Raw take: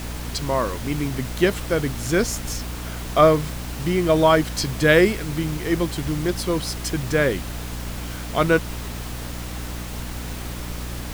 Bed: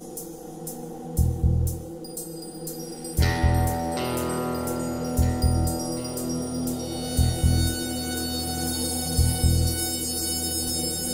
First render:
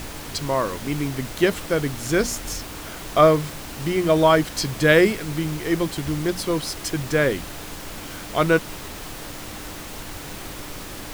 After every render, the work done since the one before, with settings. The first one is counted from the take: hum notches 60/120/180/240 Hz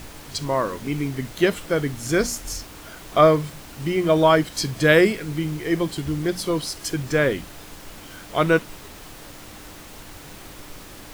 noise print and reduce 6 dB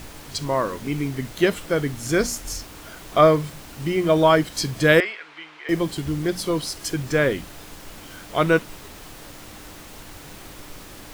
5.00–5.69 s: Butterworth band-pass 1.7 kHz, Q 0.7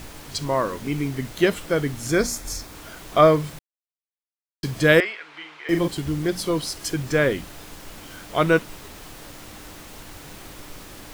2.10–2.73 s: band-stop 2.9 kHz, Q 6.6; 3.59–4.63 s: mute; 5.30–5.88 s: doubling 41 ms -6 dB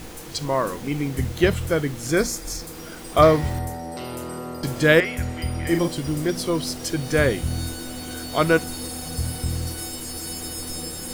add bed -5.5 dB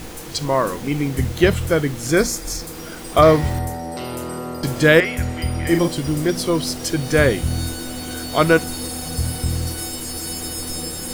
trim +4 dB; peak limiter -2 dBFS, peak gain reduction 3 dB

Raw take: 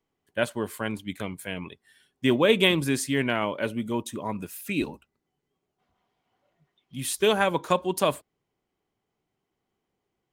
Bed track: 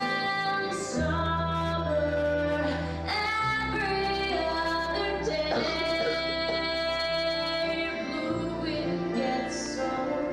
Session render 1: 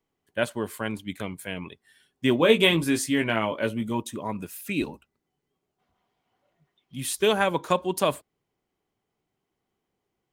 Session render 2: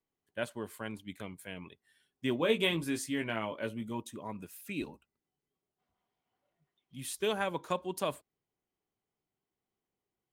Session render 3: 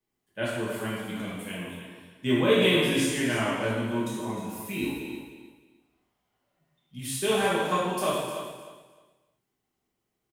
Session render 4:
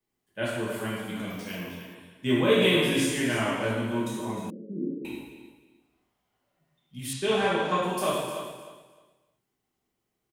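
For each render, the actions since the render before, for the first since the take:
2.38–4.00 s: doubling 18 ms -6 dB
trim -10 dB
feedback delay 307 ms, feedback 22%, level -10.5 dB; gated-style reverb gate 390 ms falling, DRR -7.5 dB
1.30–1.95 s: careless resampling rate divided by 3×, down none, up hold; 4.50–5.05 s: Chebyshev band-pass 150–560 Hz, order 5; 7.13–7.83 s: low-pass 5.5 kHz

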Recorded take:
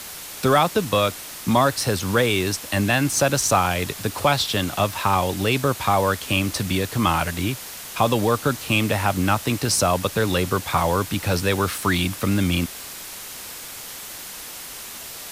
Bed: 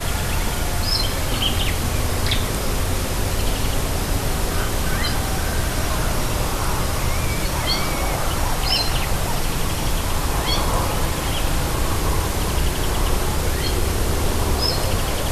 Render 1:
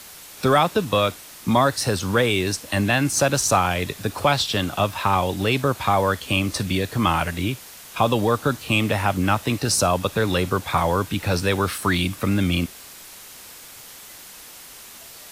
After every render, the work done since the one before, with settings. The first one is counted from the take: noise print and reduce 6 dB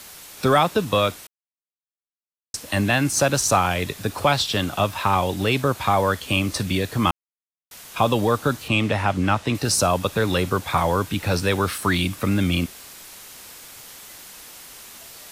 1.27–2.54 s: mute; 7.11–7.71 s: mute; 8.68–9.55 s: distance through air 53 m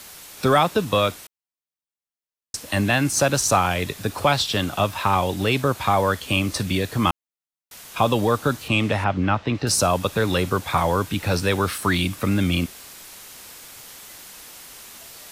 9.04–9.67 s: distance through air 170 m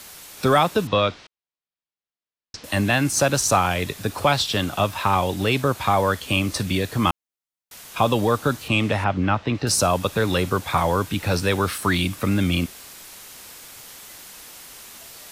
0.87–2.64 s: low-pass 5 kHz 24 dB/octave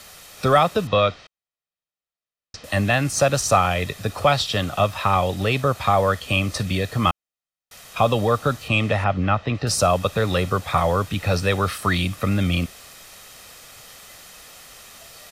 treble shelf 8.3 kHz -7.5 dB; comb 1.6 ms, depth 42%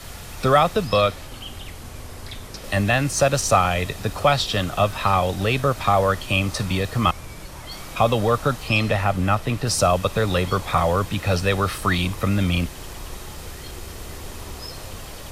add bed -15.5 dB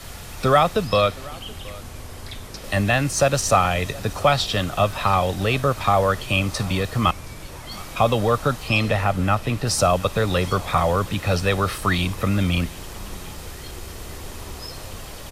delay 721 ms -22 dB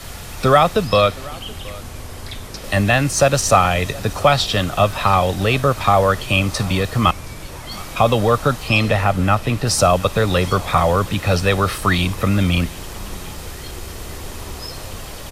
trim +4 dB; peak limiter -1 dBFS, peak gain reduction 1 dB

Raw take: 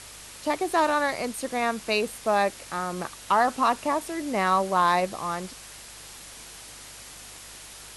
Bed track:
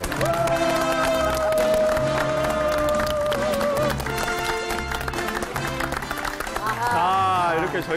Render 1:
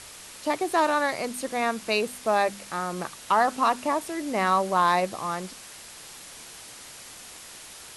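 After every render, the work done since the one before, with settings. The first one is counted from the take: de-hum 50 Hz, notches 5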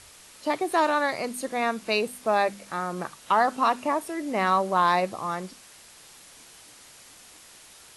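noise print and reduce 6 dB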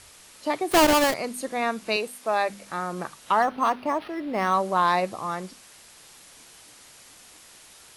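0.71–1.14 s: square wave that keeps the level; 1.96–2.50 s: high-pass 430 Hz 6 dB/octave; 3.42–4.54 s: decimation joined by straight lines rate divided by 6×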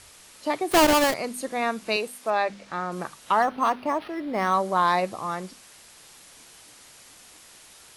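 2.30–2.92 s: low-pass 5.3 kHz; 4.22–4.99 s: band-stop 2.7 kHz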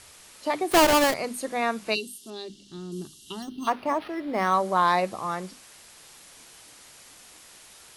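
hum notches 50/100/150/200/250/300 Hz; 1.94–3.67 s: time-frequency box 430–2700 Hz -24 dB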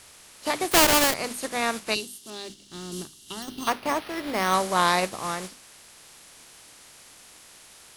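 spectral contrast reduction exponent 0.64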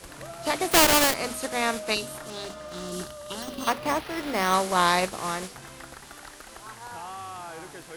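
add bed track -18.5 dB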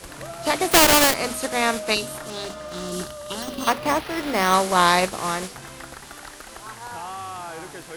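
trim +4.5 dB; peak limiter -1 dBFS, peak gain reduction 2 dB

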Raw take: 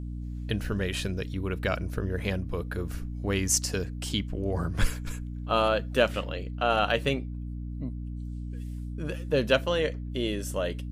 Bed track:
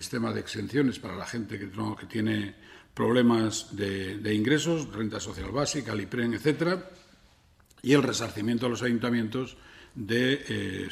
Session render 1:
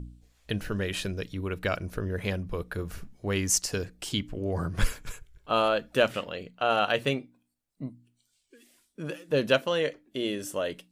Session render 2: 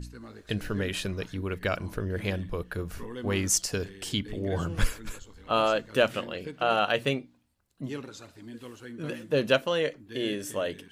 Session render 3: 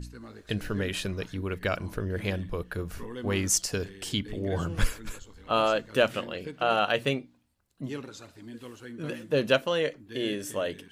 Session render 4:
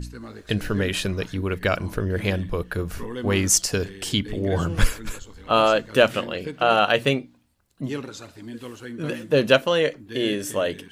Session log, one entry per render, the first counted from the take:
de-hum 60 Hz, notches 5
add bed track -16 dB
no audible change
trim +6.5 dB

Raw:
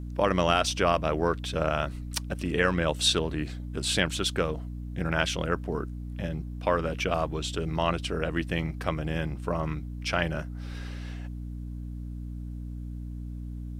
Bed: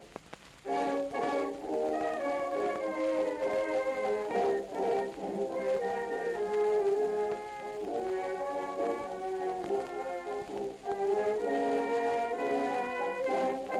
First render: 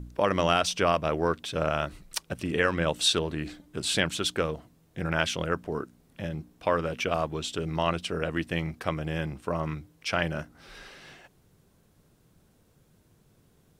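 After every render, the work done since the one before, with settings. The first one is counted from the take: de-hum 60 Hz, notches 5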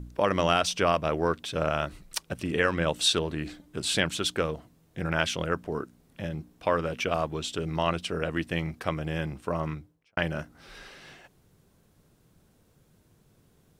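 9.63–10.17 s: studio fade out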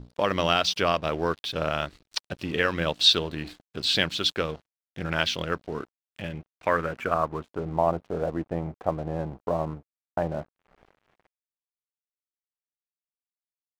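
low-pass sweep 4.4 kHz -> 770 Hz, 5.71–7.84 s; crossover distortion -46 dBFS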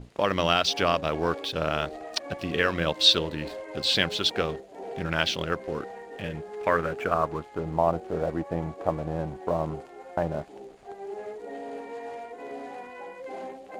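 add bed -7.5 dB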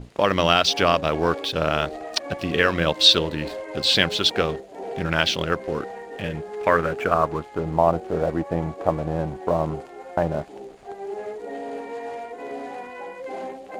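trim +5 dB; peak limiter -2 dBFS, peak gain reduction 1.5 dB

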